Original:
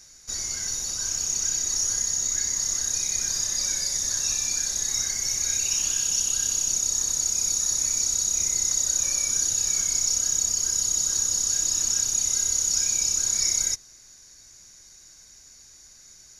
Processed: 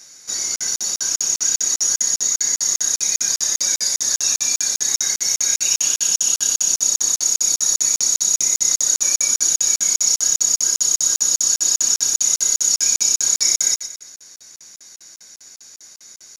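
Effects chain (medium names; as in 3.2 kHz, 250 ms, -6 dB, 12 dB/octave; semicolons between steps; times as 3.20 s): high-pass 180 Hz 12 dB/octave; bass shelf 240 Hz -3.5 dB; feedback delay 118 ms, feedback 43%, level -10 dB; crackling interface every 0.20 s, samples 2048, zero, from 0.56 s; trim +7 dB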